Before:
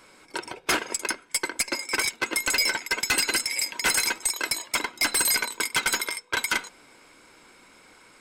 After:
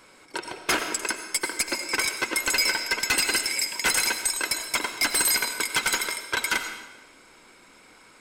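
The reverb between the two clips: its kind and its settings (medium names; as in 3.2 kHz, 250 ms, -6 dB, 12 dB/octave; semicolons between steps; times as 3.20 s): algorithmic reverb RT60 1 s, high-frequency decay 0.95×, pre-delay 50 ms, DRR 7.5 dB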